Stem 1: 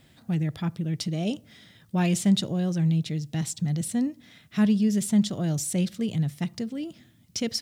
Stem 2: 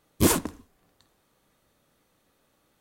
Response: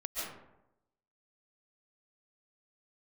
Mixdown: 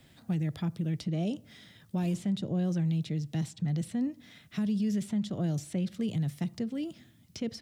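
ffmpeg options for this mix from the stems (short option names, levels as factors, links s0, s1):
-filter_complex "[0:a]volume=0.841,asplit=2[s0][s1];[1:a]adelay=1800,volume=0.1[s2];[s1]apad=whole_len=203223[s3];[s2][s3]sidechaincompress=threshold=0.0398:ratio=8:attack=16:release=390[s4];[s0][s4]amix=inputs=2:normalize=0,acrossover=split=160|720|3600[s5][s6][s7][s8];[s5]acompressor=threshold=0.0251:ratio=4[s9];[s6]acompressor=threshold=0.0398:ratio=4[s10];[s7]acompressor=threshold=0.00398:ratio=4[s11];[s8]acompressor=threshold=0.00251:ratio=4[s12];[s9][s10][s11][s12]amix=inputs=4:normalize=0,alimiter=limit=0.0668:level=0:latency=1:release=61"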